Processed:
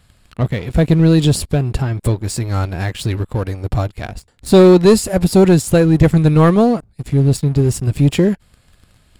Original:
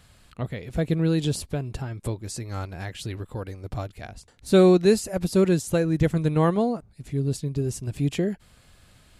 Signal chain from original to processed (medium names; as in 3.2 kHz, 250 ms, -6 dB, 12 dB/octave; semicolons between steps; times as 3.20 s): bass shelf 160 Hz +4.5 dB; band-stop 6.1 kHz, Q 10; waveshaping leveller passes 2; trim +3.5 dB